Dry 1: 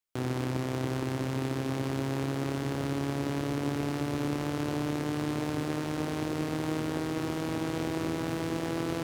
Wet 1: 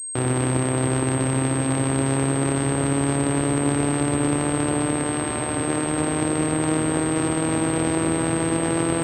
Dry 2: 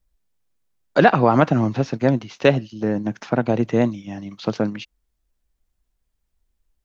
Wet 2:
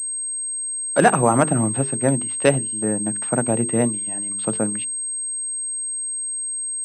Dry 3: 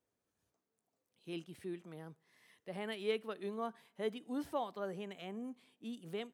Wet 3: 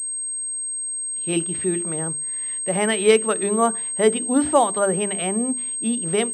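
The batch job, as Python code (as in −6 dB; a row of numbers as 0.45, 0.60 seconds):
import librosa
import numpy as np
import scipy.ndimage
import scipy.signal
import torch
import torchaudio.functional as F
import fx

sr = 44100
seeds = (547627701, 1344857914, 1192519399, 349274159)

y = fx.hum_notches(x, sr, base_hz=50, count=9)
y = fx.pwm(y, sr, carrier_hz=8400.0)
y = y * 10.0 ** (-22 / 20.0) / np.sqrt(np.mean(np.square(y)))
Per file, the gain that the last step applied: +10.0, −1.0, +21.0 decibels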